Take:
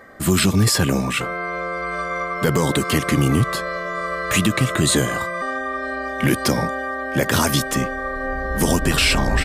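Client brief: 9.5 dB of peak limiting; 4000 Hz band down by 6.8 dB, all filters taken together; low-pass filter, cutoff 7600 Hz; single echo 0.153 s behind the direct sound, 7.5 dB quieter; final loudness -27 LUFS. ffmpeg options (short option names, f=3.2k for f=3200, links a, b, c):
-af "lowpass=7.6k,equalizer=f=4k:t=o:g=-9,alimiter=limit=-16.5dB:level=0:latency=1,aecho=1:1:153:0.422,volume=-2dB"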